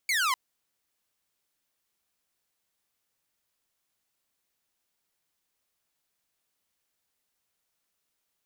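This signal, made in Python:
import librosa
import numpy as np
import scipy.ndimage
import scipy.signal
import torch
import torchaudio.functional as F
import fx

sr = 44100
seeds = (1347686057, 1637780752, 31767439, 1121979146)

y = fx.laser_zap(sr, level_db=-21, start_hz=2300.0, end_hz=980.0, length_s=0.25, wave='saw')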